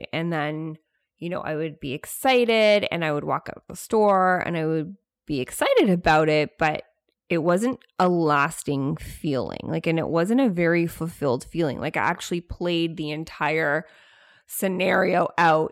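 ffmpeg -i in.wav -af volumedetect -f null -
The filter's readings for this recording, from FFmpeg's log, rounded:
mean_volume: -23.4 dB
max_volume: -7.5 dB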